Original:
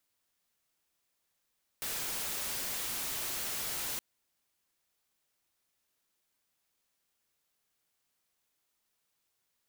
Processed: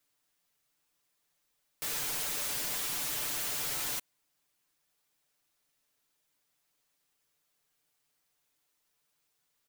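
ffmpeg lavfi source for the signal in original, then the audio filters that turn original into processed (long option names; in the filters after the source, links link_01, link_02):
-f lavfi -i "anoisesrc=color=white:amplitude=0.0259:duration=2.17:sample_rate=44100:seed=1"
-af "aecho=1:1:6.8:0.76"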